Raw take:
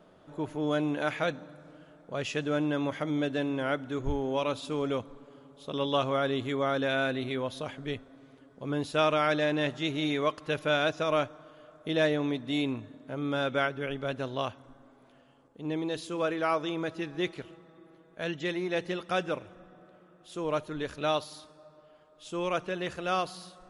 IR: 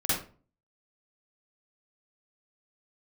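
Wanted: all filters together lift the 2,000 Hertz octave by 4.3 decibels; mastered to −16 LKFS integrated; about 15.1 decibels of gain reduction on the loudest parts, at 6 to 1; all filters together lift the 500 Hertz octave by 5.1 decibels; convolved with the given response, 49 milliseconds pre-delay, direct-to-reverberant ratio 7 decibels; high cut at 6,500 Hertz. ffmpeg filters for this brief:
-filter_complex "[0:a]lowpass=6500,equalizer=frequency=500:width_type=o:gain=6,equalizer=frequency=2000:width_type=o:gain=5.5,acompressor=threshold=-35dB:ratio=6,asplit=2[link_01][link_02];[1:a]atrim=start_sample=2205,adelay=49[link_03];[link_02][link_03]afir=irnorm=-1:irlink=0,volume=-16.5dB[link_04];[link_01][link_04]amix=inputs=2:normalize=0,volume=22dB"

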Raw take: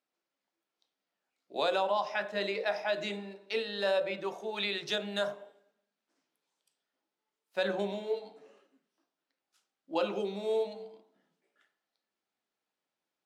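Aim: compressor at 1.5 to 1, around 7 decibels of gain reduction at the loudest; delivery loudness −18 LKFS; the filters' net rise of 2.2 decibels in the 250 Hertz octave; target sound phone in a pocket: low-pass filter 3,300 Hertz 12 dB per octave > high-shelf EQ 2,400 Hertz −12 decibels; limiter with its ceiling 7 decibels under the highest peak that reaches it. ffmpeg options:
ffmpeg -i in.wav -af "equalizer=frequency=250:width_type=o:gain=3.5,acompressor=threshold=-45dB:ratio=1.5,alimiter=level_in=7dB:limit=-24dB:level=0:latency=1,volume=-7dB,lowpass=3300,highshelf=frequency=2400:gain=-12,volume=25dB" out.wav

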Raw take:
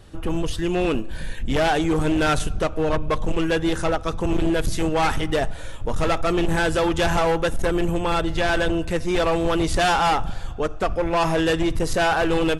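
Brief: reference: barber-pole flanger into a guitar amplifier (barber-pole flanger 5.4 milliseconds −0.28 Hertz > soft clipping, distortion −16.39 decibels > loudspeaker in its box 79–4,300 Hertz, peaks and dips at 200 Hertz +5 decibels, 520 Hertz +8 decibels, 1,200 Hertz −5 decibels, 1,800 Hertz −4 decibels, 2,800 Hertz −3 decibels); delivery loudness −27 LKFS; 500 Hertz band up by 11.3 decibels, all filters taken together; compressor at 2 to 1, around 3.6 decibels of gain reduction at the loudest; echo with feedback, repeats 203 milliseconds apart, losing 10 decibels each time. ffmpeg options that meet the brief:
ffmpeg -i in.wav -filter_complex "[0:a]equalizer=frequency=500:width_type=o:gain=7,acompressor=threshold=-19dB:ratio=2,aecho=1:1:203|406|609|812:0.316|0.101|0.0324|0.0104,asplit=2[link_01][link_02];[link_02]adelay=5.4,afreqshift=-0.28[link_03];[link_01][link_03]amix=inputs=2:normalize=1,asoftclip=threshold=-17dB,highpass=79,equalizer=frequency=200:width_type=q:width=4:gain=5,equalizer=frequency=520:width_type=q:width=4:gain=8,equalizer=frequency=1200:width_type=q:width=4:gain=-5,equalizer=frequency=1800:width_type=q:width=4:gain=-4,equalizer=frequency=2800:width_type=q:width=4:gain=-3,lowpass=frequency=4300:width=0.5412,lowpass=frequency=4300:width=1.3066,volume=-4.5dB" out.wav

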